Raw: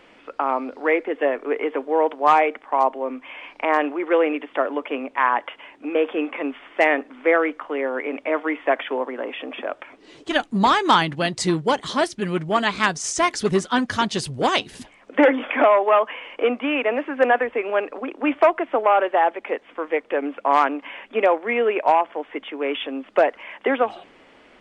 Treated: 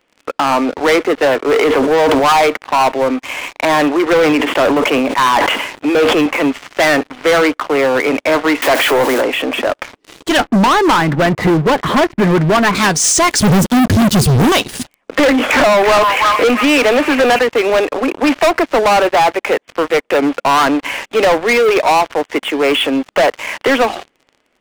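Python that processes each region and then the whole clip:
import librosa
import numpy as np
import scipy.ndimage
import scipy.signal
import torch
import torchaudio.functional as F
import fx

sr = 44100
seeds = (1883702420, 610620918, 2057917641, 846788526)

y = fx.chain(x, sr, fx.highpass(hz=150.0, slope=12),
    fx.sustainer(db_per_s=40.0), at=(1.4, 2.24))
y = fx.chain(y, sr, fx.highpass(hz=120.0, slope=24),
    fx.sustainer(db_per_s=64.0), at=(4.06, 6.26))
y = fx.chain(y, sr, fx.zero_step(step_db=-27.0),
    fx.steep_highpass(hz=240.0, slope=36), at=(8.62, 9.22))
y = fx.chain(y, sr, fx.lowpass(hz=2100.0, slope=24),
    fx.band_squash(depth_pct=100), at=(10.39, 12.75))
y = fx.chain(y, sr, fx.curve_eq(hz=(210.0, 1200.0, 2600.0), db=(0, -29, -21)),
    fx.leveller(passes=5), at=(13.4, 14.52))
y = fx.chain(y, sr, fx.echo_stepped(ms=331, hz=1300.0, octaves=0.7, feedback_pct=70, wet_db=-4.5),
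    fx.band_squash(depth_pct=40), at=(15.19, 17.39))
y = fx.high_shelf(y, sr, hz=8800.0, db=9.5)
y = fx.leveller(y, sr, passes=5)
y = y * 10.0 ** (-3.0 / 20.0)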